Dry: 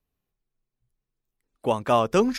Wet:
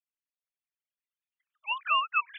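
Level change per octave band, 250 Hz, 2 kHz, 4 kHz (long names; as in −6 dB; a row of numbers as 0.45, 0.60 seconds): below −40 dB, +6.0 dB, +1.5 dB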